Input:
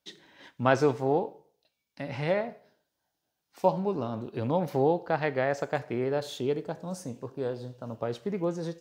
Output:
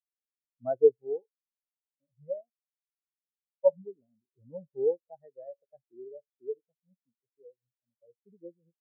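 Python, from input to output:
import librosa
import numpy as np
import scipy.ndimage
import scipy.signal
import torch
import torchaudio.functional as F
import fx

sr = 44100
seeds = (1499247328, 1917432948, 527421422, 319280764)

y = fx.spectral_expand(x, sr, expansion=4.0)
y = y * librosa.db_to_amplitude(-2.0)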